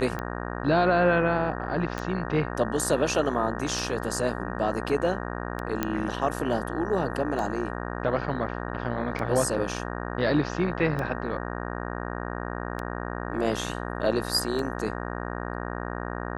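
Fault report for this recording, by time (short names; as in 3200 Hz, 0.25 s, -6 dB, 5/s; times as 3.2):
buzz 60 Hz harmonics 31 -33 dBFS
tick 33 1/3 rpm -19 dBFS
1.98 pop
5.83 pop -11 dBFS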